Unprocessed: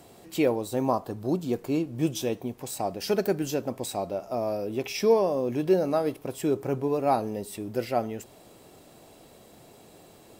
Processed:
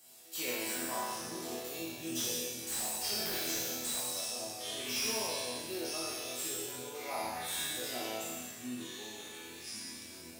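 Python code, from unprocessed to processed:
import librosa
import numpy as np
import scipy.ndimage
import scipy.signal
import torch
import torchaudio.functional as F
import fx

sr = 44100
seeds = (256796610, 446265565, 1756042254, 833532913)

y = fx.spec_trails(x, sr, decay_s=1.63)
y = fx.high_shelf(y, sr, hz=2100.0, db=9.0)
y = fx.echo_pitch(y, sr, ms=86, semitones=-7, count=3, db_per_echo=-6.0)
y = fx.tilt_eq(y, sr, slope=3.0)
y = fx.resonator_bank(y, sr, root=40, chord='sus4', decay_s=0.77)
y = fx.slew_limit(y, sr, full_power_hz=170.0)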